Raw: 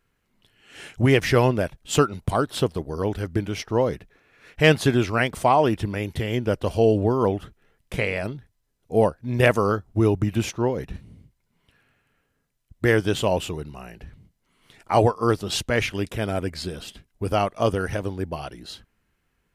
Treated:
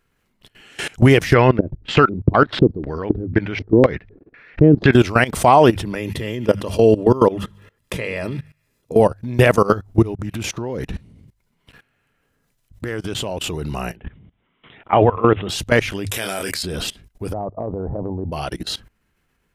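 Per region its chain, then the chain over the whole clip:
0:01.34–0:04.93: parametric band 4,700 Hz +9.5 dB 0.93 octaves + auto-filter low-pass square 2 Hz 330–2,000 Hz
0:05.95–0:09.00: mains-hum notches 50/100/150/200 Hz + notch comb filter 750 Hz + delay with a high-pass on its return 70 ms, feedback 52%, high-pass 1,600 Hz, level −20 dB
0:10.02–0:13.44: downward compressor, threshold −33 dBFS + highs frequency-modulated by the lows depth 0.14 ms
0:13.96–0:15.49: high-pass filter 69 Hz 6 dB per octave + high-shelf EQ 7,300 Hz −10.5 dB + bad sample-rate conversion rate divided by 6×, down none, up filtered
0:16.11–0:16.63: spectral tilt +4 dB per octave + double-tracking delay 26 ms −7.5 dB
0:17.33–0:18.32: Butterworth low-pass 920 Hz + downward compressor 10 to 1, threshold −25 dBFS
whole clip: mains-hum notches 50/100 Hz; output level in coarse steps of 21 dB; boost into a limiter +18 dB; level −1.5 dB

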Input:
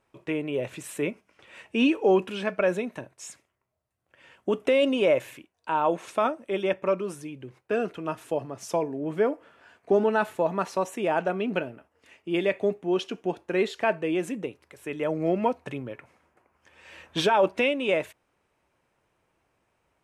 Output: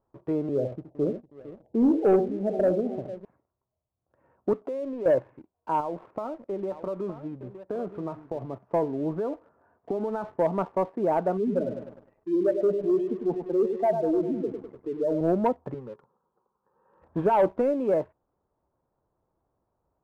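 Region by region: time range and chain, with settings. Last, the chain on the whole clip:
0:00.49–0:03.25: Butterworth low-pass 790 Hz 72 dB per octave + multi-tap delay 71/96/456/821 ms −9/−18.5/−16/−19.5 dB
0:04.53–0:05.06: downward compressor 2.5 to 1, threshold −36 dBFS + high-pass filter 200 Hz
0:05.80–0:08.53: downward compressor, threshold −29 dBFS + single-tap delay 915 ms −11.5 dB
0:09.13–0:10.24: downward compressor 10 to 1, threshold −27 dBFS + dynamic equaliser 1,900 Hz, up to +4 dB, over −50 dBFS, Q 0.76
0:11.37–0:15.21: expanding power law on the bin magnitudes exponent 2.2 + feedback echo at a low word length 101 ms, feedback 55%, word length 9 bits, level −7 dB
0:15.74–0:17.02: low-shelf EQ 180 Hz −7 dB + phaser with its sweep stopped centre 440 Hz, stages 8
whole clip: low-pass filter 1,100 Hz 24 dB per octave; leveller curve on the samples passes 1; low-shelf EQ 78 Hz +6 dB; level −2 dB

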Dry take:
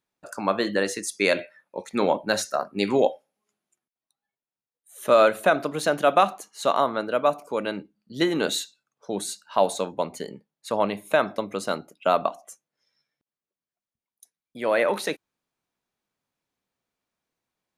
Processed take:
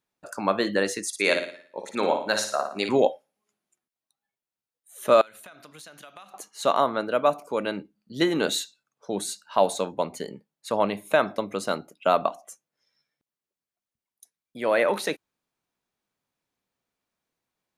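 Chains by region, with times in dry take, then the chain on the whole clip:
0:01.07–0:02.89: low-pass filter 12,000 Hz + low-shelf EQ 270 Hz −11 dB + flutter between parallel walls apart 9.8 metres, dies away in 0.5 s
0:05.21–0:06.34: guitar amp tone stack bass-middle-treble 5-5-5 + downward compressor 12 to 1, threshold −41 dBFS + hum removal 268.5 Hz, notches 24
whole clip: no processing

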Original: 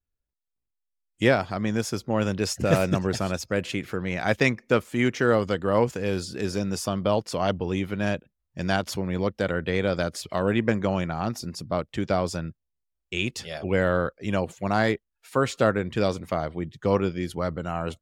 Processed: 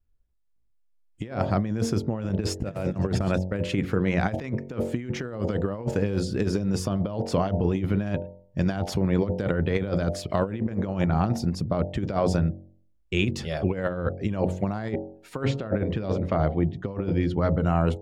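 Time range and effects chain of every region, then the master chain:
0:02.29–0:03.63: noise gate −32 dBFS, range −16 dB + parametric band 6,000 Hz −3 dB 0.21 octaves
0:15.42–0:17.65: low-pass filter 4,700 Hz + mains-hum notches 60/120/180/240/300/360/420/480/540 Hz
whole clip: spectral tilt −2.5 dB per octave; hum removal 46 Hz, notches 20; compressor whose output falls as the input rises −24 dBFS, ratio −0.5

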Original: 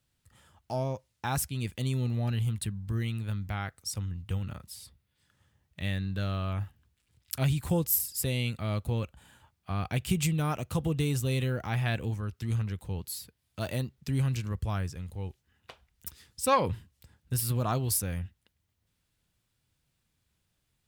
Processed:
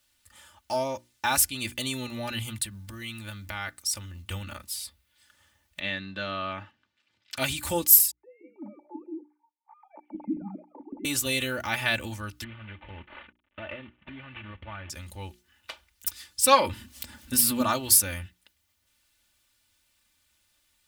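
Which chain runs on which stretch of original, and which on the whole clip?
0:02.60–0:04.28: downward compressor 10 to 1, threshold −33 dBFS + floating-point word with a short mantissa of 6 bits
0:05.80–0:07.37: high-pass filter 130 Hz 24 dB per octave + high-frequency loss of the air 190 metres
0:08.11–0:11.05: three sine waves on the formant tracks + formant resonators in series u + three-band delay without the direct sound mids, highs, lows 90/170 ms, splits 430/2,800 Hz
0:12.44–0:14.90: variable-slope delta modulation 16 kbit/s + downward compressor 12 to 1, threshold −36 dBFS
0:16.73–0:17.62: parametric band 240 Hz +14.5 dB 0.36 octaves + upward compression, threshold −35 dBFS
whole clip: tilt shelving filter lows −6.5 dB, about 720 Hz; mains-hum notches 60/120/180/240/300/360 Hz; comb filter 3.4 ms, depth 73%; level +3 dB

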